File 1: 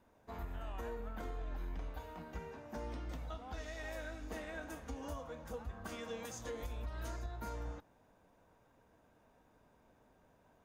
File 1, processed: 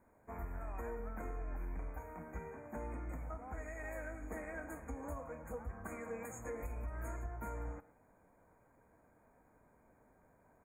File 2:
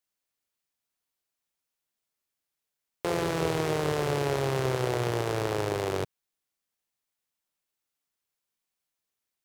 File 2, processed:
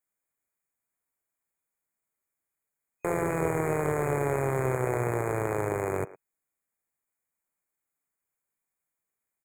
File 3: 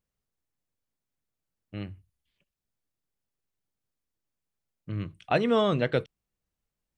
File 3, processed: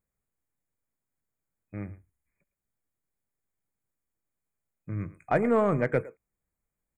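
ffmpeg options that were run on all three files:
-filter_complex "[0:a]asplit=2[link_01][link_02];[link_02]adelay=110,highpass=300,lowpass=3400,asoftclip=type=hard:threshold=-20.5dB,volume=-16dB[link_03];[link_01][link_03]amix=inputs=2:normalize=0,afftfilt=real='re*(1-between(b*sr/4096,2500,6500))':imag='im*(1-between(b*sr/4096,2500,6500))':win_size=4096:overlap=0.75,aeval=exprs='0.251*(cos(1*acos(clip(val(0)/0.251,-1,1)))-cos(1*PI/2))+0.00631*(cos(6*acos(clip(val(0)/0.251,-1,1)))-cos(6*PI/2))':channel_layout=same"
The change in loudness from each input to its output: 0.0, 0.0, 0.0 LU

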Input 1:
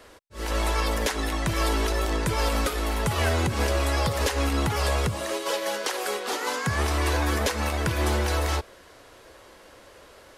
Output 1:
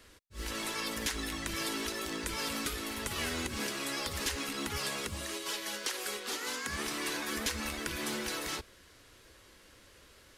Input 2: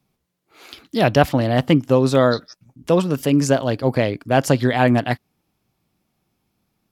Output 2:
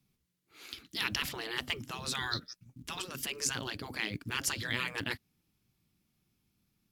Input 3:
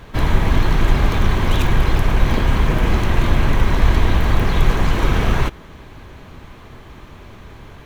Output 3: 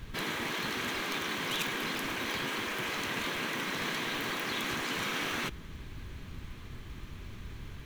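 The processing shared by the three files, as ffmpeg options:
-af "afftfilt=real='re*lt(hypot(re,im),0.316)':imag='im*lt(hypot(re,im),0.316)':win_size=1024:overlap=0.75,equalizer=frequency=700:width_type=o:width=1.8:gain=-12.5,acrusher=bits=8:mode=log:mix=0:aa=0.000001,volume=-3.5dB"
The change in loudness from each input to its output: −9.0, −17.0, −14.5 LU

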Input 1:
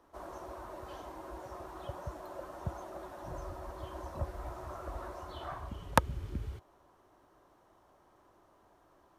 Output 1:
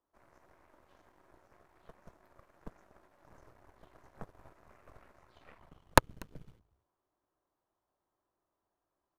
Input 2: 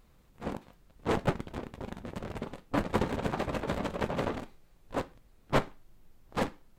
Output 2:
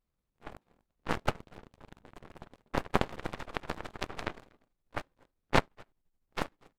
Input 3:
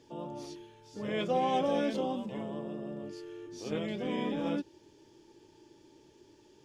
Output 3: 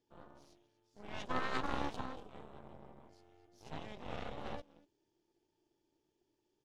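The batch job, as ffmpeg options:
-af "aecho=1:1:241:0.188,aeval=exprs='0.376*(cos(1*acos(clip(val(0)/0.376,-1,1)))-cos(1*PI/2))+0.119*(cos(2*acos(clip(val(0)/0.376,-1,1)))-cos(2*PI/2))+0.0335*(cos(3*acos(clip(val(0)/0.376,-1,1)))-cos(3*PI/2))+0.0335*(cos(6*acos(clip(val(0)/0.376,-1,1)))-cos(6*PI/2))+0.0422*(cos(7*acos(clip(val(0)/0.376,-1,1)))-cos(7*PI/2))':channel_layout=same,volume=3.5dB"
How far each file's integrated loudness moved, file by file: +12.5, −1.5, −8.5 LU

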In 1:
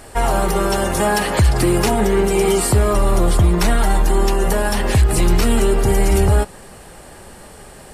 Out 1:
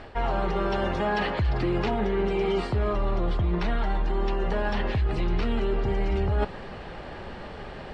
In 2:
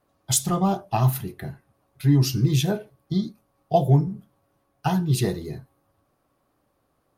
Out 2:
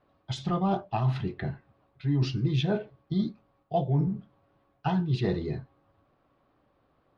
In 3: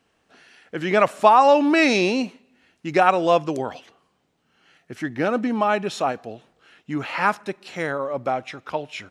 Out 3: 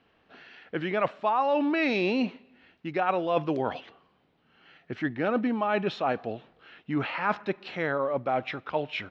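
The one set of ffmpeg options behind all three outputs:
-af "areverse,acompressor=threshold=-25dB:ratio=5,areverse,lowpass=frequency=3900:width=0.5412,lowpass=frequency=3900:width=1.3066,volume=1.5dB"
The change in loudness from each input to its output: −10.5, −6.5, −7.5 LU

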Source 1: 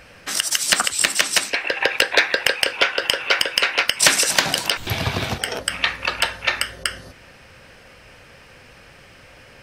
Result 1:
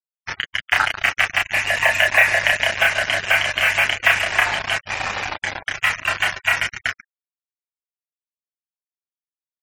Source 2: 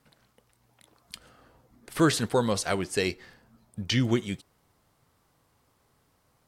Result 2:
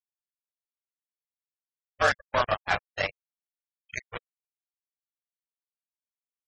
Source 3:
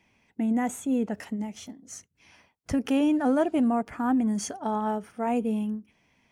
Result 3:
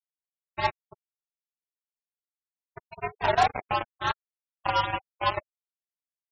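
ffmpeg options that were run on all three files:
-filter_complex "[0:a]highpass=frequency=530:width_type=q:width=0.5412,highpass=frequency=530:width_type=q:width=1.307,lowpass=frequency=2500:width_type=q:width=0.5176,lowpass=frequency=2500:width_type=q:width=0.7071,lowpass=frequency=2500:width_type=q:width=1.932,afreqshift=120,flanger=delay=5.8:depth=2.5:regen=-33:speed=0.72:shape=triangular,asplit=2[link_01][link_02];[link_02]asplit=5[link_03][link_04][link_05][link_06][link_07];[link_03]adelay=256,afreqshift=-32,volume=-15.5dB[link_08];[link_04]adelay=512,afreqshift=-64,volume=-20.5dB[link_09];[link_05]adelay=768,afreqshift=-96,volume=-25.6dB[link_10];[link_06]adelay=1024,afreqshift=-128,volume=-30.6dB[link_11];[link_07]adelay=1280,afreqshift=-160,volume=-35.6dB[link_12];[link_08][link_09][link_10][link_11][link_12]amix=inputs=5:normalize=0[link_13];[link_01][link_13]amix=inputs=2:normalize=0,adynamicequalizer=threshold=0.00794:dfrequency=1000:dqfactor=1.5:tfrequency=1000:tqfactor=1.5:attack=5:release=100:ratio=0.375:range=2.5:mode=cutabove:tftype=bell,asplit=2[link_14][link_15];[link_15]aecho=0:1:142|284|426|568:0.224|0.0985|0.0433|0.0191[link_16];[link_14][link_16]amix=inputs=2:normalize=0,aeval=exprs='val(0)+0.00631*(sin(2*PI*50*n/s)+sin(2*PI*2*50*n/s)/2+sin(2*PI*3*50*n/s)/3+sin(2*PI*4*50*n/s)/4+sin(2*PI*5*50*n/s)/5)':channel_layout=same,afftfilt=real='re*gte(hypot(re,im),0.02)':imag='im*gte(hypot(re,im),0.02)':win_size=1024:overlap=0.75,acontrast=40,asplit=2[link_17][link_18];[link_18]adelay=31,volume=-2.5dB[link_19];[link_17][link_19]amix=inputs=2:normalize=0,acrusher=bits=3:mix=0:aa=0.5,afftfilt=real='re*gte(hypot(re,im),0.0224)':imag='im*gte(hypot(re,im),0.0224)':win_size=1024:overlap=0.75,volume=2dB"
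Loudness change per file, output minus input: +0.5, −0.5, −1.5 LU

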